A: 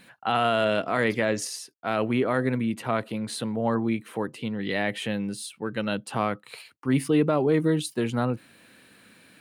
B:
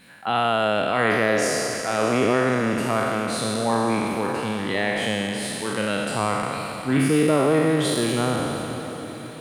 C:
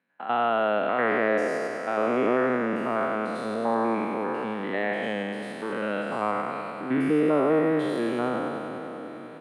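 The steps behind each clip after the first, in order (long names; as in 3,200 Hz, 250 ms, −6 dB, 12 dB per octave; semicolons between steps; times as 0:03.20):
peak hold with a decay on every bin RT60 2.62 s; feedback delay with all-pass diffusion 604 ms, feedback 59%, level −13.5 dB
spectrum averaged block by block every 100 ms; noise gate with hold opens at −28 dBFS; three-way crossover with the lows and the highs turned down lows −24 dB, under 180 Hz, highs −20 dB, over 2,400 Hz; level −1.5 dB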